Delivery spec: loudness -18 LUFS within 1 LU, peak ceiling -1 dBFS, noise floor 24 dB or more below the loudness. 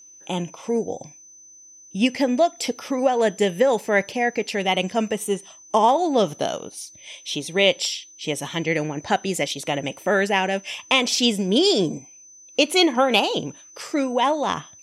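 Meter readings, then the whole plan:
steady tone 6.1 kHz; tone level -45 dBFS; loudness -22.0 LUFS; peak level -3.5 dBFS; loudness target -18.0 LUFS
-> band-stop 6.1 kHz, Q 30; trim +4 dB; peak limiter -1 dBFS

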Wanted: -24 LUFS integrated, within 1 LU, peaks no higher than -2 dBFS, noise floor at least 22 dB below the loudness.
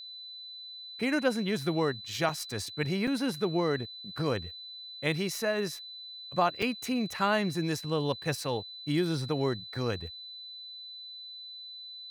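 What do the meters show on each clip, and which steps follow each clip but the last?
dropouts 3; longest dropout 5.3 ms; steady tone 4 kHz; tone level -42 dBFS; loudness -32.0 LUFS; peak level -13.5 dBFS; loudness target -24.0 LUFS
-> interpolate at 2.29/3.07/6.62 s, 5.3 ms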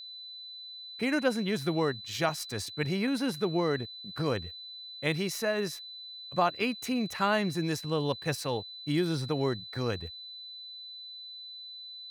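dropouts 0; steady tone 4 kHz; tone level -42 dBFS
-> band-stop 4 kHz, Q 30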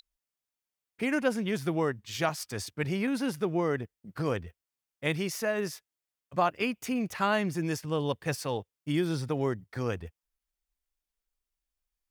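steady tone not found; loudness -31.5 LUFS; peak level -13.5 dBFS; loudness target -24.0 LUFS
-> trim +7.5 dB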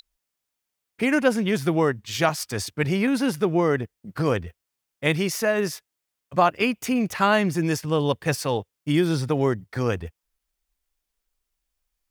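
loudness -24.0 LUFS; peak level -6.0 dBFS; noise floor -83 dBFS

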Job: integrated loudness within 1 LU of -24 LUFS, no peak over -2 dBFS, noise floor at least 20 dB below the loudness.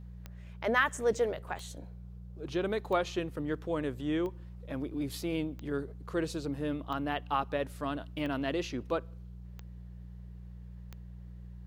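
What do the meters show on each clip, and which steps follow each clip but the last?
clicks found 9; hum 60 Hz; highest harmonic 180 Hz; hum level -43 dBFS; loudness -34.0 LUFS; peak level -12.5 dBFS; loudness target -24.0 LUFS
-> de-click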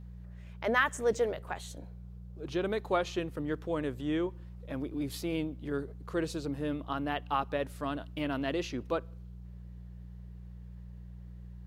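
clicks found 0; hum 60 Hz; highest harmonic 180 Hz; hum level -43 dBFS
-> de-hum 60 Hz, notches 3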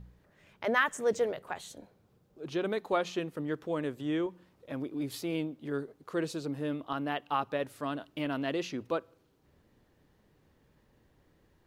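hum not found; loudness -34.0 LUFS; peak level -13.0 dBFS; loudness target -24.0 LUFS
-> trim +10 dB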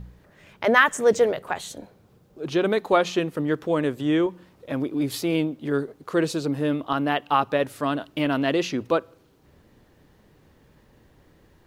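loudness -24.0 LUFS; peak level -3.0 dBFS; noise floor -58 dBFS

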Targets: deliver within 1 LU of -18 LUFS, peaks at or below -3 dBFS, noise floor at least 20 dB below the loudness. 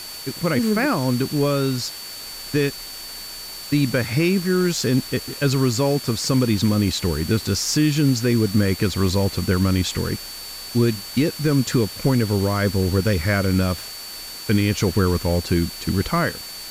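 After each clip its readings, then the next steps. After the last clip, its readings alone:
steady tone 4.5 kHz; tone level -35 dBFS; noise floor -35 dBFS; noise floor target -41 dBFS; loudness -21.0 LUFS; peak level -6.5 dBFS; loudness target -18.0 LUFS
-> band-stop 4.5 kHz, Q 30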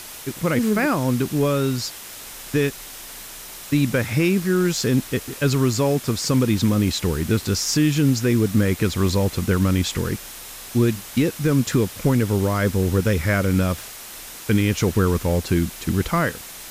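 steady tone not found; noise floor -38 dBFS; noise floor target -41 dBFS
-> noise print and reduce 6 dB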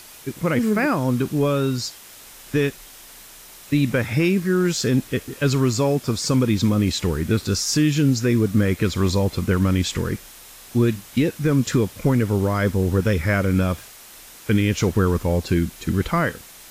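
noise floor -44 dBFS; loudness -21.0 LUFS; peak level -7.0 dBFS; loudness target -18.0 LUFS
-> trim +3 dB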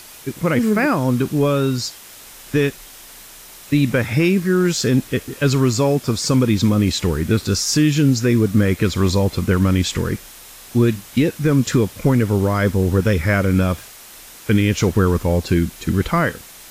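loudness -18.0 LUFS; peak level -4.0 dBFS; noise floor -41 dBFS

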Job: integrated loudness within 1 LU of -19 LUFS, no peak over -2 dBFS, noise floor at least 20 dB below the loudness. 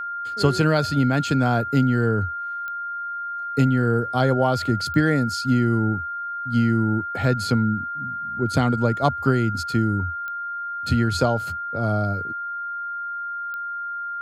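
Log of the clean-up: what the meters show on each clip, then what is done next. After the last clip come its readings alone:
clicks found 4; steady tone 1.4 kHz; tone level -27 dBFS; loudness -23.0 LUFS; peak level -5.5 dBFS; loudness target -19.0 LUFS
-> de-click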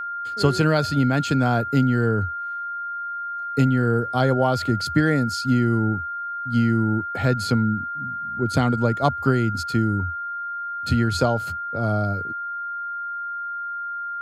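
clicks found 0; steady tone 1.4 kHz; tone level -27 dBFS
-> band-stop 1.4 kHz, Q 30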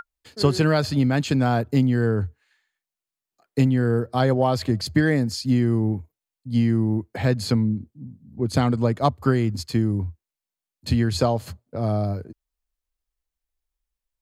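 steady tone not found; loudness -22.5 LUFS; peak level -6.0 dBFS; loudness target -19.0 LUFS
-> trim +3.5 dB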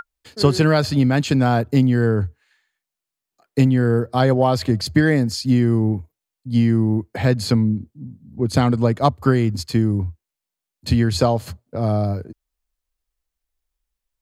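loudness -19.0 LUFS; peak level -2.5 dBFS; noise floor -86 dBFS

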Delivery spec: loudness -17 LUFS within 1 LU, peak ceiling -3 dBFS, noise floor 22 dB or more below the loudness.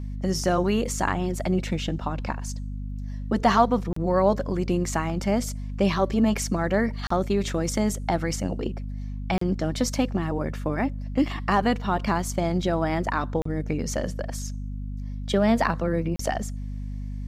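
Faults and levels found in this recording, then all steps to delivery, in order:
dropouts 5; longest dropout 34 ms; hum 50 Hz; highest harmonic 250 Hz; hum level -30 dBFS; loudness -26.0 LUFS; peak level -7.0 dBFS; loudness target -17.0 LUFS
-> interpolate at 3.93/7.07/9.38/13.42/16.16 s, 34 ms; hum notches 50/100/150/200/250 Hz; trim +9 dB; peak limiter -3 dBFS

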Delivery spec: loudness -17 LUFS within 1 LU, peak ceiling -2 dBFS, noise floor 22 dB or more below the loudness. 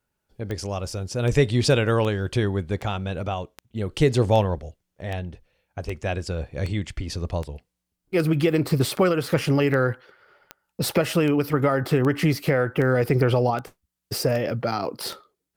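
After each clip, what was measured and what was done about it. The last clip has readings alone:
clicks found 20; loudness -24.0 LUFS; peak level -7.0 dBFS; loudness target -17.0 LUFS
-> de-click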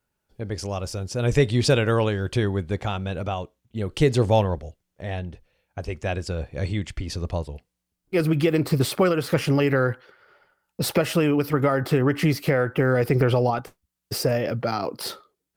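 clicks found 0; loudness -24.0 LUFS; peak level -7.0 dBFS; loudness target -17.0 LUFS
-> trim +7 dB; peak limiter -2 dBFS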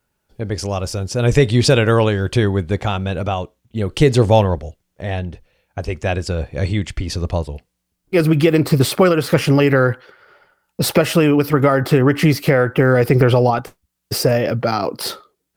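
loudness -17.0 LUFS; peak level -2.0 dBFS; noise floor -74 dBFS

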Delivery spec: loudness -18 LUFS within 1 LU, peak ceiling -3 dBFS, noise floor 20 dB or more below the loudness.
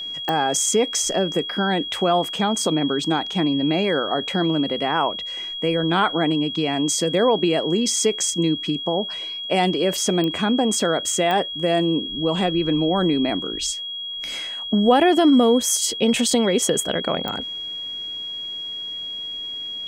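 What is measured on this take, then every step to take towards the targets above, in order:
clicks found 4; steady tone 3.3 kHz; tone level -28 dBFS; loudness -21.0 LUFS; peak level -5.0 dBFS; loudness target -18.0 LUFS
-> de-click; band-stop 3.3 kHz, Q 30; trim +3 dB; peak limiter -3 dBFS

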